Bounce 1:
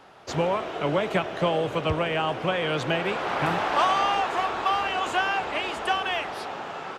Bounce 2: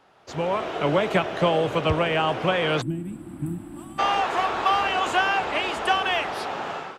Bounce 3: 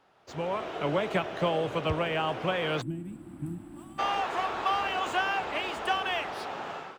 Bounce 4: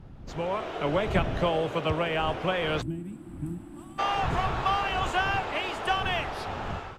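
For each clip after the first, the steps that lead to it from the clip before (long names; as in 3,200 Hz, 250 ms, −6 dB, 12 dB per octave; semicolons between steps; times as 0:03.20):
automatic gain control gain up to 14 dB; gain on a spectral selection 0:02.81–0:03.99, 360–7,500 Hz −29 dB; level −7.5 dB
running median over 3 samples; level −6.5 dB
wind on the microphone 120 Hz −39 dBFS; level +1.5 dB; AAC 96 kbit/s 32,000 Hz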